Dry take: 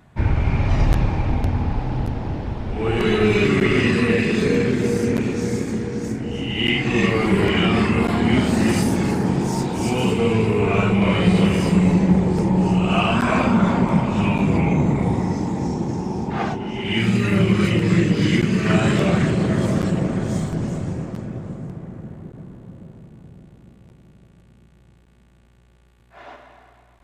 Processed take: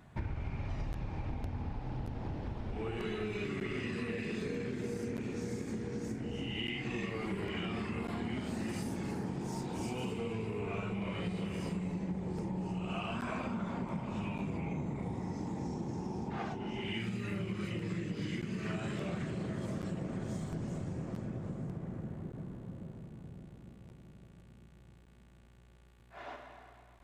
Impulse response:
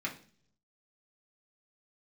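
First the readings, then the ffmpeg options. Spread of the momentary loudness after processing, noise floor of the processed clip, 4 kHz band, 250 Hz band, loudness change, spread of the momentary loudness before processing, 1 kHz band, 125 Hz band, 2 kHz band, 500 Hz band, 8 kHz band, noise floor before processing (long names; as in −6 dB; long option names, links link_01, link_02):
11 LU, −59 dBFS, −18.0 dB, −18.5 dB, −19.0 dB, 9 LU, −18.5 dB, −18.5 dB, −19.0 dB, −18.5 dB, −18.0 dB, −53 dBFS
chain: -af "acompressor=threshold=-30dB:ratio=6,volume=-5.5dB"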